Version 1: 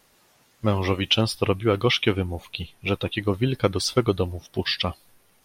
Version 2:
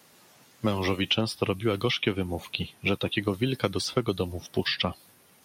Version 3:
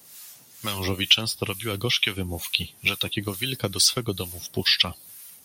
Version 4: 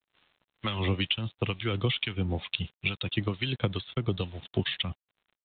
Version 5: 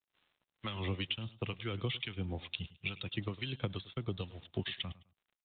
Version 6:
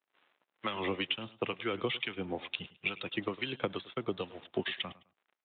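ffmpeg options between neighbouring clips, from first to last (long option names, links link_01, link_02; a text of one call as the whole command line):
ffmpeg -i in.wav -filter_complex "[0:a]highpass=140,bass=frequency=250:gain=5,treble=frequency=4000:gain=1,acrossover=split=230|3000[link_01][link_02][link_03];[link_01]acompressor=threshold=-34dB:ratio=4[link_04];[link_02]acompressor=threshold=-29dB:ratio=4[link_05];[link_03]acompressor=threshold=-37dB:ratio=4[link_06];[link_04][link_05][link_06]amix=inputs=3:normalize=0,volume=3dB" out.wav
ffmpeg -i in.wav -filter_complex "[0:a]lowshelf=frequency=130:gain=11,crystalizer=i=8.5:c=0,acrossover=split=920[link_01][link_02];[link_01]aeval=exprs='val(0)*(1-0.7/2+0.7/2*cos(2*PI*2.2*n/s))':channel_layout=same[link_03];[link_02]aeval=exprs='val(0)*(1-0.7/2-0.7/2*cos(2*PI*2.2*n/s))':channel_layout=same[link_04];[link_03][link_04]amix=inputs=2:normalize=0,volume=-3dB" out.wav
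ffmpeg -i in.wav -filter_complex "[0:a]acrossover=split=200[link_01][link_02];[link_02]acompressor=threshold=-31dB:ratio=4[link_03];[link_01][link_03]amix=inputs=2:normalize=0,aresample=8000,aeval=exprs='sgn(val(0))*max(abs(val(0))-0.00224,0)':channel_layout=same,aresample=44100,volume=2.5dB" out.wav
ffmpeg -i in.wav -af "aecho=1:1:105|210:0.119|0.0285,volume=-8.5dB" out.wav
ffmpeg -i in.wav -af "highpass=310,lowpass=2400,volume=8.5dB" out.wav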